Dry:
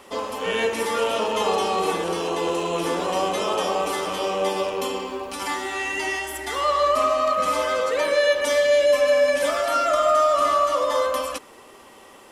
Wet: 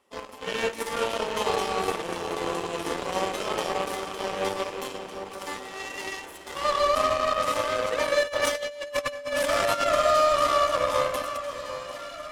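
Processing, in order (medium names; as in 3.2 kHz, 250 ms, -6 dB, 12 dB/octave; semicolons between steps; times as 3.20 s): Chebyshev shaper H 7 -18 dB, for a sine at -9.5 dBFS; echo whose repeats swap between lows and highs 753 ms, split 1.7 kHz, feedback 72%, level -10 dB; 8.23–9.86 s: compressor with a negative ratio -24 dBFS, ratio -0.5; trim -3 dB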